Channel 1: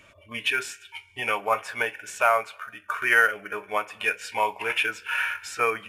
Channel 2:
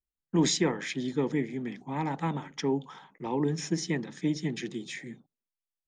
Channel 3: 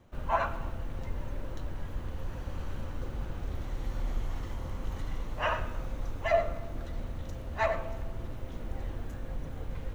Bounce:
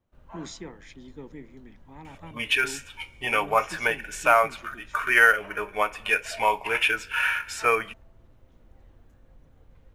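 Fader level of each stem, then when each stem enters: +2.0, −14.0, −17.5 decibels; 2.05, 0.00, 0.00 seconds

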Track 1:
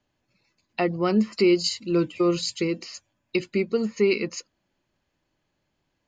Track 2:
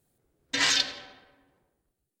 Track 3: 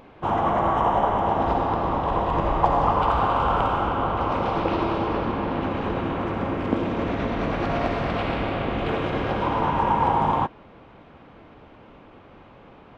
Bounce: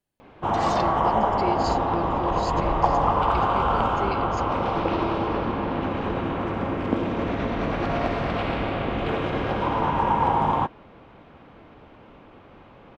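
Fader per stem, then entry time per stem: −11.0, −14.5, −0.5 decibels; 0.00, 0.00, 0.20 seconds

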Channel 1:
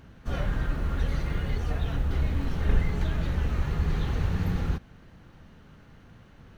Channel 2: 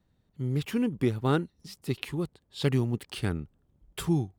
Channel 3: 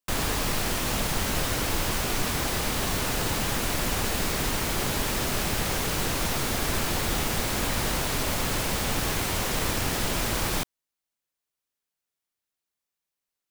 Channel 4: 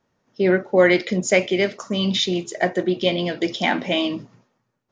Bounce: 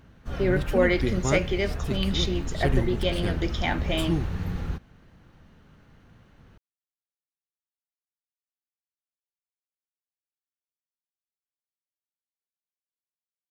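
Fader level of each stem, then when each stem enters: −3.0 dB, −1.5 dB, muted, −7.0 dB; 0.00 s, 0.00 s, muted, 0.00 s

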